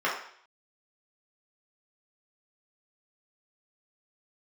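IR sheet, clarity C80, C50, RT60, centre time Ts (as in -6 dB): 8.5 dB, 4.5 dB, 0.60 s, 38 ms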